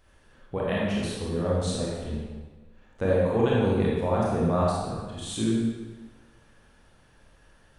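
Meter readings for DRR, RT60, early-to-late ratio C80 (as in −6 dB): −6.0 dB, 1.4 s, 0.5 dB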